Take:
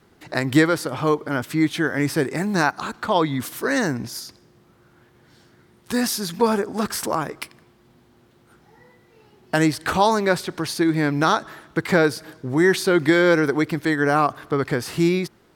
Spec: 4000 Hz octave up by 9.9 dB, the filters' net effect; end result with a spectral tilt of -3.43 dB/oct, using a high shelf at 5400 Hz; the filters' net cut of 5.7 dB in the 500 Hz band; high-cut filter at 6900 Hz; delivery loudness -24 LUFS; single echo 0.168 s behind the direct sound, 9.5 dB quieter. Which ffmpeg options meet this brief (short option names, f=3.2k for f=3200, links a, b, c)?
-af "lowpass=6.9k,equalizer=f=500:t=o:g=-8,equalizer=f=4k:t=o:g=9,highshelf=f=5.4k:g=8.5,aecho=1:1:168:0.335,volume=-3dB"